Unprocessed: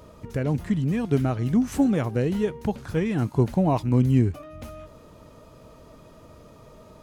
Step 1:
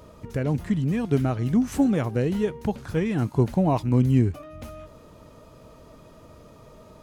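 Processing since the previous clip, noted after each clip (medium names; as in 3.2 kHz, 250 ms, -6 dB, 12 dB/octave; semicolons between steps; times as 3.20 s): no audible change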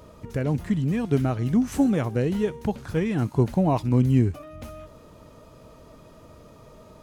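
feedback echo behind a high-pass 63 ms, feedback 50%, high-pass 5.2 kHz, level -12 dB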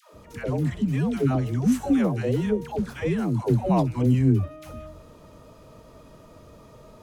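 phase dispersion lows, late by 140 ms, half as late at 550 Hz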